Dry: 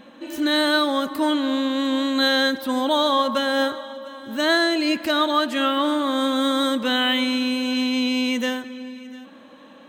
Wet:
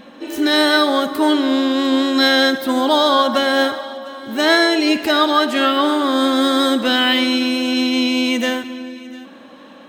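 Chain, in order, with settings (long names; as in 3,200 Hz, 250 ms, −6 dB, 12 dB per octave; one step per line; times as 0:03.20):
pitch-shifted copies added +5 semitones −14 dB
four-comb reverb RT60 0.91 s, DRR 13.5 dB
level +5 dB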